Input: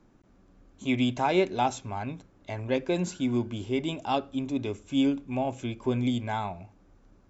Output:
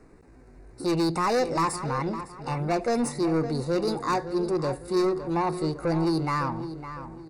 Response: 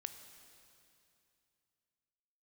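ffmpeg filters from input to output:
-filter_complex "[0:a]lowshelf=frequency=89:gain=2,asetrate=58866,aresample=44100,atempo=0.749154,asoftclip=type=tanh:threshold=-27dB,asuperstop=centerf=3200:order=4:qfactor=2.7,asplit=2[link_01][link_02];[link_02]adelay=558,lowpass=frequency=3300:poles=1,volume=-11dB,asplit=2[link_03][link_04];[link_04]adelay=558,lowpass=frequency=3300:poles=1,volume=0.37,asplit=2[link_05][link_06];[link_06]adelay=558,lowpass=frequency=3300:poles=1,volume=0.37,asplit=2[link_07][link_08];[link_08]adelay=558,lowpass=frequency=3300:poles=1,volume=0.37[link_09];[link_01][link_03][link_05][link_07][link_09]amix=inputs=5:normalize=0,volume=6.5dB"

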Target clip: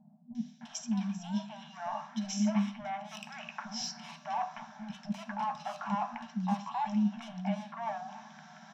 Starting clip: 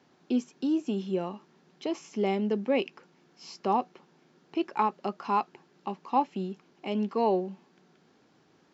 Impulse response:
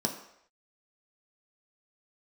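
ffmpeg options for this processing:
-filter_complex "[0:a]highpass=120,asplit=2[link_01][link_02];[link_02]highpass=frequency=720:poles=1,volume=24dB,asoftclip=type=tanh:threshold=-13.5dB[link_03];[link_01][link_03]amix=inputs=2:normalize=0,lowpass=frequency=1200:poles=1,volume=-6dB,areverse,acompressor=threshold=-32dB:ratio=12,areverse,tiltshelf=frequency=1500:gain=-5,acrossover=split=450|2800[link_04][link_05][link_06];[link_06]adelay=350[link_07];[link_05]adelay=610[link_08];[link_04][link_08][link_07]amix=inputs=3:normalize=0,asplit=2[link_09][link_10];[1:a]atrim=start_sample=2205,afade=type=out:start_time=0.19:duration=0.01,atrim=end_sample=8820,lowshelf=frequency=130:gain=8[link_11];[link_10][link_11]afir=irnorm=-1:irlink=0,volume=-4.5dB[link_12];[link_09][link_12]amix=inputs=2:normalize=0,afftfilt=real='re*(1-between(b*sr/4096,240,600))':imag='im*(1-between(b*sr/4096,240,600))':win_size=4096:overlap=0.75,volume=-2.5dB"

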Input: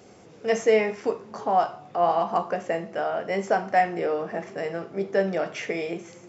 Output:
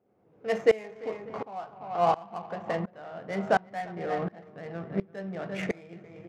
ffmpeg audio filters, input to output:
ffmpeg -i in.wav -filter_complex "[0:a]asplit=2[link_01][link_02];[link_02]aecho=0:1:235|344|591:0.141|0.299|0.106[link_03];[link_01][link_03]amix=inputs=2:normalize=0,asubboost=boost=7:cutoff=150,adynamicsmooth=sensitivity=3.5:basefreq=1200,lowshelf=frequency=82:gain=-9.5,aeval=exprs='val(0)*pow(10,-23*if(lt(mod(-1.4*n/s,1),2*abs(-1.4)/1000),1-mod(-1.4*n/s,1)/(2*abs(-1.4)/1000),(mod(-1.4*n/s,1)-2*abs(-1.4)/1000)/(1-2*abs(-1.4)/1000))/20)':channel_layout=same,volume=2.5dB" out.wav

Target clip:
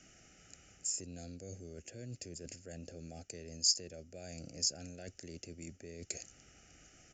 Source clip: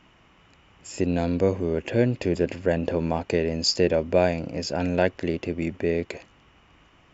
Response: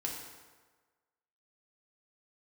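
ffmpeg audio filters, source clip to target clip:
-filter_complex "[0:a]areverse,acompressor=threshold=-34dB:ratio=6,areverse,asuperstop=centerf=1000:order=12:qfactor=2.4,acrossover=split=150|3000[link_01][link_02][link_03];[link_02]acompressor=threshold=-48dB:ratio=2[link_04];[link_01][link_04][link_03]amix=inputs=3:normalize=0,aexciter=amount=14.2:drive=4.5:freq=5300,aresample=16000,aresample=44100,volume=-5.5dB"

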